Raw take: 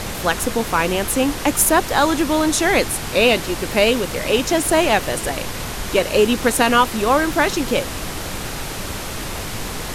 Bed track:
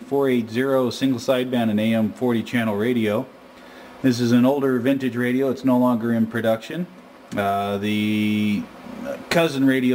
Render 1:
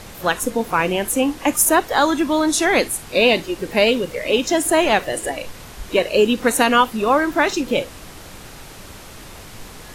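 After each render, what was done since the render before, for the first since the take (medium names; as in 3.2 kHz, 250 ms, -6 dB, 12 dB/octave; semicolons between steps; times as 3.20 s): noise print and reduce 11 dB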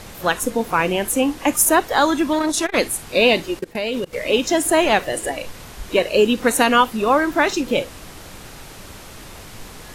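2.33–2.78 s: transformer saturation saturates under 920 Hz; 3.59–4.13 s: level held to a coarse grid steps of 23 dB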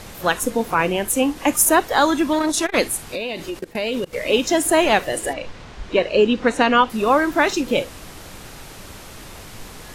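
0.74–1.36 s: three bands expanded up and down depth 40%; 3.09–3.64 s: compression 8:1, threshold -23 dBFS; 5.33–6.90 s: distance through air 120 m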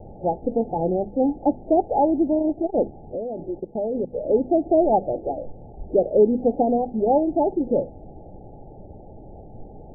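Chebyshev low-pass 860 Hz, order 10; hum notches 50/100/150/200/250 Hz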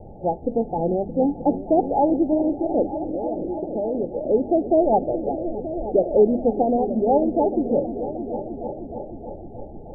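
delay with an opening low-pass 310 ms, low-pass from 200 Hz, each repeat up 1 oct, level -6 dB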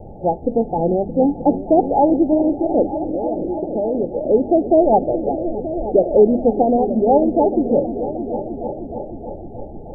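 trim +4.5 dB; peak limiter -3 dBFS, peak gain reduction 1 dB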